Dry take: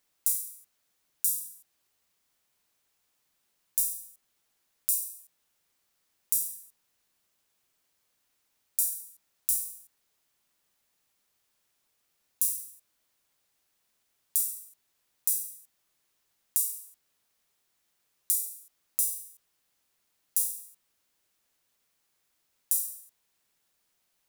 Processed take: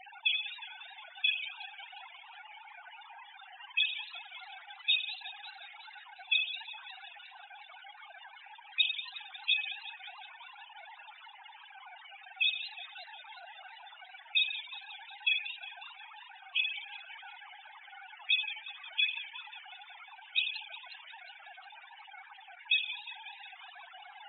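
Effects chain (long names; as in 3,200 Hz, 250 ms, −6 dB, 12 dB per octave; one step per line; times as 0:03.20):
three sine waves on the formant tracks
spectral peaks only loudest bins 16
feedback echo with a swinging delay time 180 ms, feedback 66%, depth 178 cents, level −14 dB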